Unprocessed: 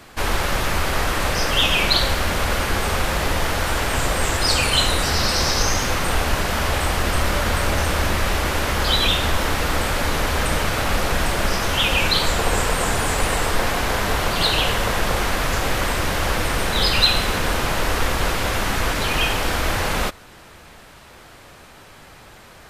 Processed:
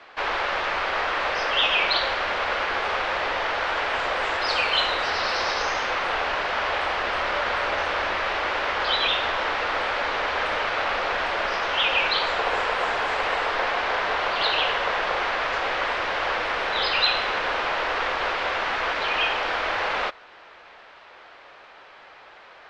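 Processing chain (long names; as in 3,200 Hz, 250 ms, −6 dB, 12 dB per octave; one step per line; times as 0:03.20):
low-pass filter 5,500 Hz 24 dB per octave
three-way crossover with the lows and the highs turned down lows −23 dB, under 430 Hz, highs −13 dB, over 3,600 Hz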